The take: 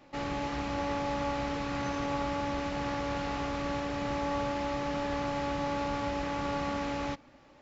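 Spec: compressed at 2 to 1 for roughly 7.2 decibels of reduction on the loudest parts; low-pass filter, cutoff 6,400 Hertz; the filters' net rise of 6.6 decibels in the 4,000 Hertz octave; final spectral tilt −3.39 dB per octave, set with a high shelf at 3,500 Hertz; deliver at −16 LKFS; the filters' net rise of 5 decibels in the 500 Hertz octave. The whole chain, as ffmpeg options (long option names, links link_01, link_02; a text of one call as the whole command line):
ffmpeg -i in.wav -af "lowpass=6400,equalizer=frequency=500:width_type=o:gain=5.5,highshelf=frequency=3500:gain=6,equalizer=frequency=4000:width_type=o:gain=5,acompressor=threshold=-39dB:ratio=2,volume=21dB" out.wav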